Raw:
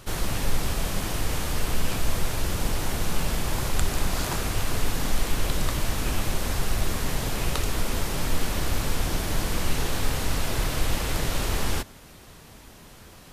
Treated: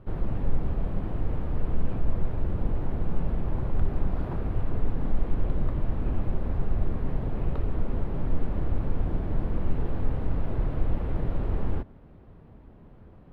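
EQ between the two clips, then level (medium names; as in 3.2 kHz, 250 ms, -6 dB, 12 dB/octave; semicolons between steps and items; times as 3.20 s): distance through air 480 m; tilt shelf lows +9.5 dB, about 1.2 kHz; treble shelf 8.9 kHz +12 dB; -9.0 dB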